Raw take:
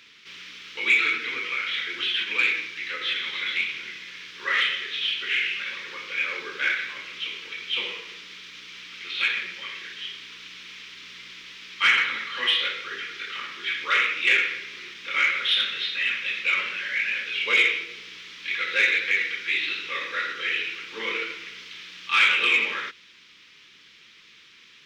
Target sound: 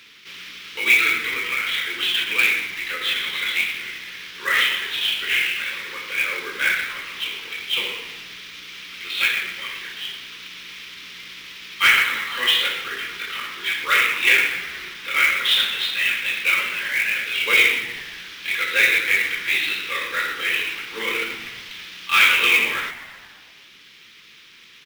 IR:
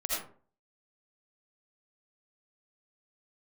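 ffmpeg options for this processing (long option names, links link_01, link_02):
-filter_complex "[0:a]acrusher=bits=3:mode=log:mix=0:aa=0.000001,asplit=8[link_01][link_02][link_03][link_04][link_05][link_06][link_07][link_08];[link_02]adelay=120,afreqshift=-110,volume=-15.5dB[link_09];[link_03]adelay=240,afreqshift=-220,volume=-19.5dB[link_10];[link_04]adelay=360,afreqshift=-330,volume=-23.5dB[link_11];[link_05]adelay=480,afreqshift=-440,volume=-27.5dB[link_12];[link_06]adelay=600,afreqshift=-550,volume=-31.6dB[link_13];[link_07]adelay=720,afreqshift=-660,volume=-35.6dB[link_14];[link_08]adelay=840,afreqshift=-770,volume=-39.6dB[link_15];[link_01][link_09][link_10][link_11][link_12][link_13][link_14][link_15]amix=inputs=8:normalize=0,volume=4dB"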